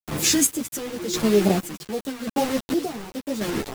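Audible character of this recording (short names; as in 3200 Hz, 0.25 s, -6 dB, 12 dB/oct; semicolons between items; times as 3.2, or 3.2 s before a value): phasing stages 2, 2.2 Hz, lowest notch 720–1500 Hz; a quantiser's noise floor 6-bit, dither none; chopped level 0.88 Hz, depth 60%, duty 40%; a shimmering, thickened sound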